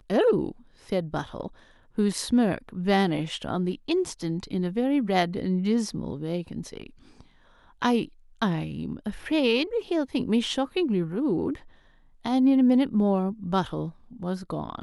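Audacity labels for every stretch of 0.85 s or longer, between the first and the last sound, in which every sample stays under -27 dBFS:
6.770000	7.820000	silence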